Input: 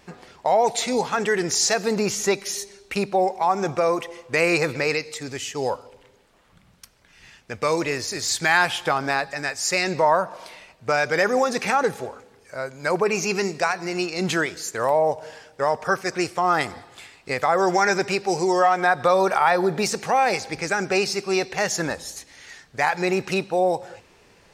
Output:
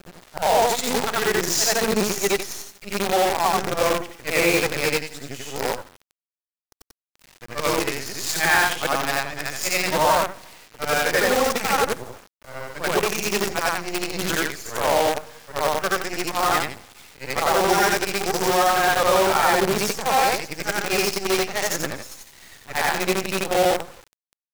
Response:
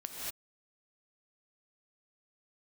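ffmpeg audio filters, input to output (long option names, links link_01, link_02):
-af "afftfilt=real='re':imag='-im':win_size=8192:overlap=0.75,acrusher=bits=5:dc=4:mix=0:aa=0.000001,volume=4.5dB"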